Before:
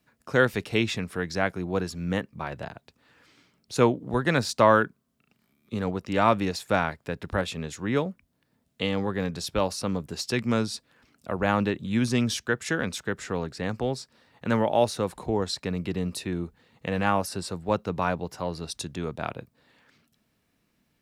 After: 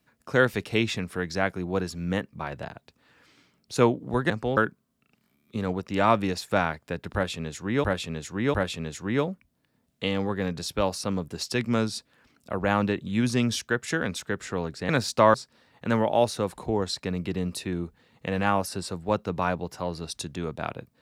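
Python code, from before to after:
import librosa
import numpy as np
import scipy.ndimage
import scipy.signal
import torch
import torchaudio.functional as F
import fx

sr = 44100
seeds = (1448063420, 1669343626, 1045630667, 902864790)

y = fx.edit(x, sr, fx.swap(start_s=4.3, length_s=0.45, other_s=13.67, other_length_s=0.27),
    fx.repeat(start_s=7.32, length_s=0.7, count=3), tone=tone)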